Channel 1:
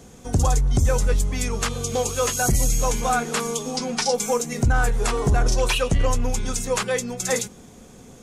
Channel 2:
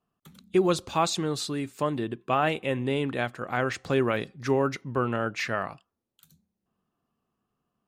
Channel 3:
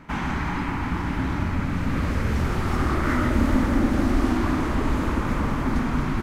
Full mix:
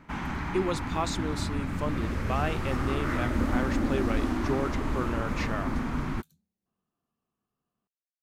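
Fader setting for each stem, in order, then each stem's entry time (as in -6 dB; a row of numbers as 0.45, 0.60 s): off, -6.0 dB, -6.5 dB; off, 0.00 s, 0.00 s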